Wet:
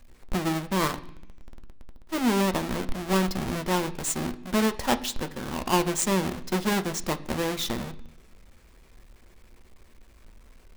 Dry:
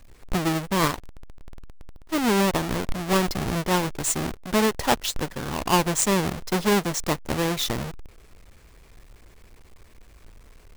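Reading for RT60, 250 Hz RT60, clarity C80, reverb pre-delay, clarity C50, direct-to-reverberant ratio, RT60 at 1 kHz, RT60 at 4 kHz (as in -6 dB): 0.70 s, 0.95 s, 19.5 dB, 3 ms, 17.0 dB, 9.0 dB, 0.70 s, 1.1 s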